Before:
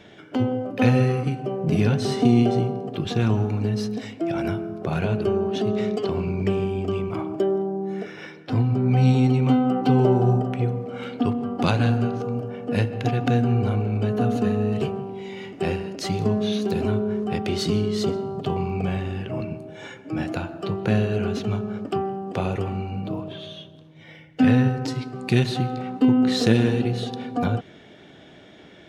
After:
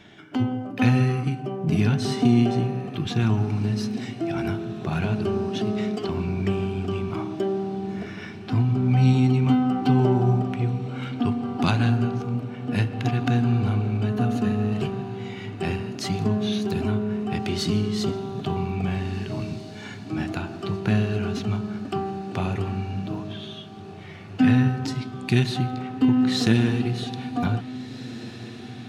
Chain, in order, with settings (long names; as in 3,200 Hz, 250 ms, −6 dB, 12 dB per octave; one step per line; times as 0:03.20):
parametric band 510 Hz −12 dB 0.48 octaves
feedback delay with all-pass diffusion 1,801 ms, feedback 60%, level −15 dB